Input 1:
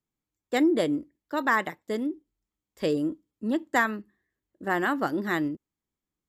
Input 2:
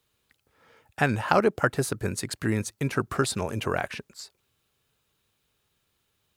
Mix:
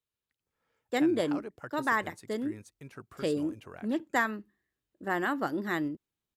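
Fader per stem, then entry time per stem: -4.0 dB, -20.0 dB; 0.40 s, 0.00 s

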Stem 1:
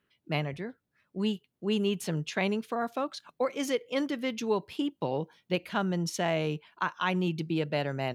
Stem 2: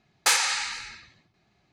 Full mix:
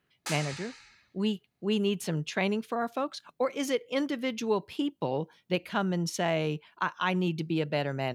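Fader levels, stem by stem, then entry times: +0.5 dB, -15.5 dB; 0.00 s, 0.00 s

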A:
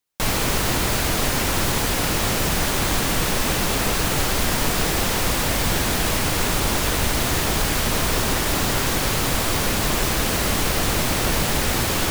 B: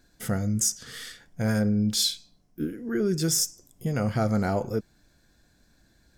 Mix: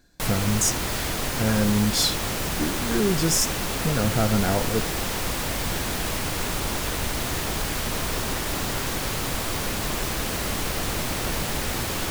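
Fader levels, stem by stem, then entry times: -6.0 dB, +2.0 dB; 0.00 s, 0.00 s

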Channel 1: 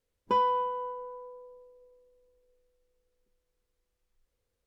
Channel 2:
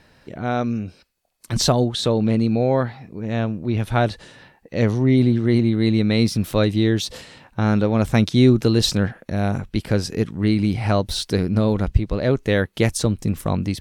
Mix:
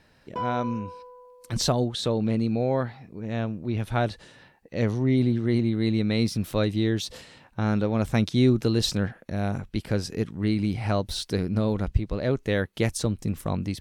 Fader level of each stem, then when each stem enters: -5.5 dB, -6.0 dB; 0.05 s, 0.00 s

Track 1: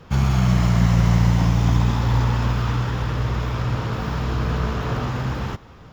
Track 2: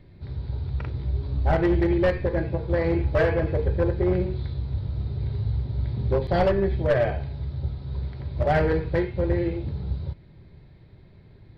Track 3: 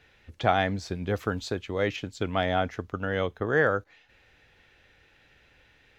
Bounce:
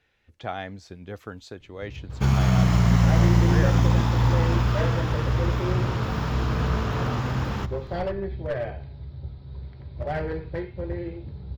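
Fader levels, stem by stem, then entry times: -1.5 dB, -7.5 dB, -9.0 dB; 2.10 s, 1.60 s, 0.00 s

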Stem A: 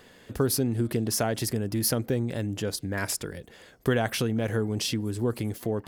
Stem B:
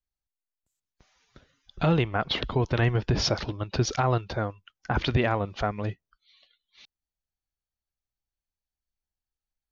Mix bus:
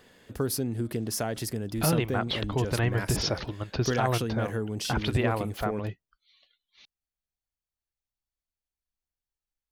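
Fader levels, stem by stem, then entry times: -4.0 dB, -3.0 dB; 0.00 s, 0.00 s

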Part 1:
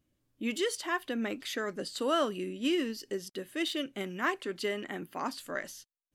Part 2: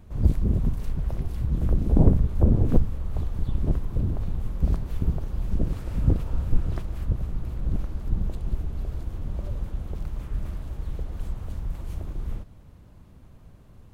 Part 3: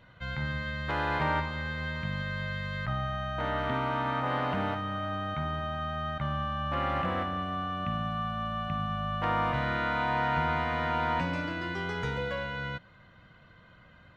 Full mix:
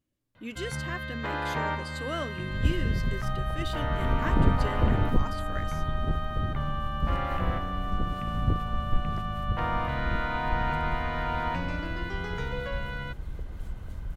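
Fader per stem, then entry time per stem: -5.5 dB, -5.5 dB, -1.5 dB; 0.00 s, 2.40 s, 0.35 s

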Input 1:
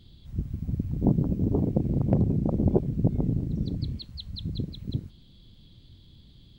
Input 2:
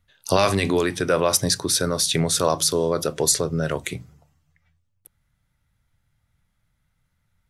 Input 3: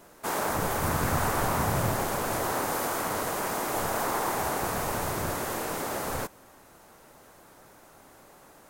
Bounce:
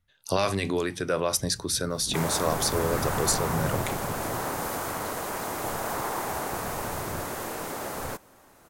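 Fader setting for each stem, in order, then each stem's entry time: -15.0 dB, -6.5 dB, -2.0 dB; 1.05 s, 0.00 s, 1.90 s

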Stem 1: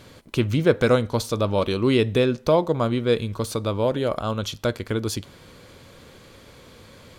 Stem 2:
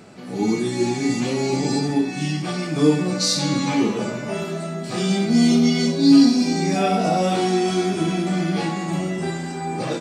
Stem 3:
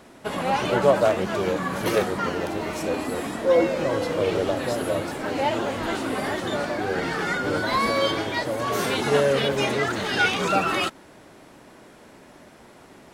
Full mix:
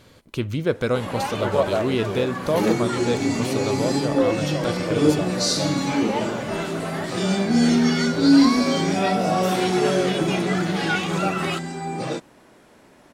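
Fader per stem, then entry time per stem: -4.0 dB, -2.0 dB, -3.5 dB; 0.00 s, 2.20 s, 0.70 s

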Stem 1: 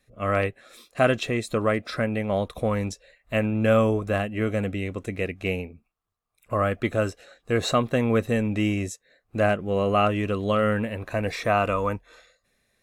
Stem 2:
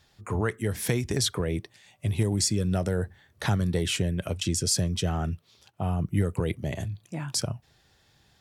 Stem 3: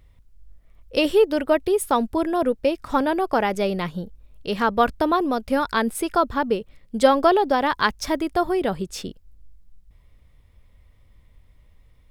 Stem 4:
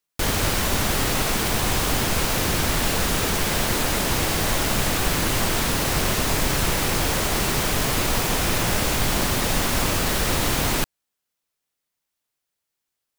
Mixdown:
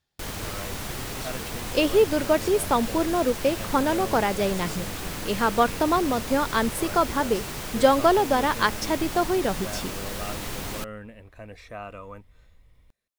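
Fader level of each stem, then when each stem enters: -16.0 dB, -17.0 dB, -2.0 dB, -11.5 dB; 0.25 s, 0.00 s, 0.80 s, 0.00 s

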